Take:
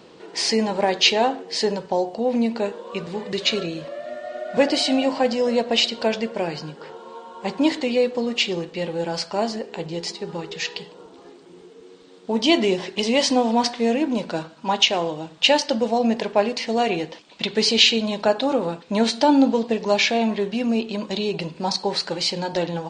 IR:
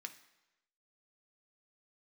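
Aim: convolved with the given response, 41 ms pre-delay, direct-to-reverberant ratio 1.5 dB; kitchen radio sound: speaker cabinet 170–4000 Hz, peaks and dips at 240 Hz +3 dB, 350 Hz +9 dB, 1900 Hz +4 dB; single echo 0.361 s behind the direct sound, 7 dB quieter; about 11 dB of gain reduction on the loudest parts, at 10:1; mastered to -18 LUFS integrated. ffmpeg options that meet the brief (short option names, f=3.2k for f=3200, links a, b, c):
-filter_complex "[0:a]acompressor=threshold=-23dB:ratio=10,aecho=1:1:361:0.447,asplit=2[a][b];[1:a]atrim=start_sample=2205,adelay=41[c];[b][c]afir=irnorm=-1:irlink=0,volume=2dB[d];[a][d]amix=inputs=2:normalize=0,highpass=170,equalizer=f=240:t=q:w=4:g=3,equalizer=f=350:t=q:w=4:g=9,equalizer=f=1.9k:t=q:w=4:g=4,lowpass=f=4k:w=0.5412,lowpass=f=4k:w=1.3066,volume=6.5dB"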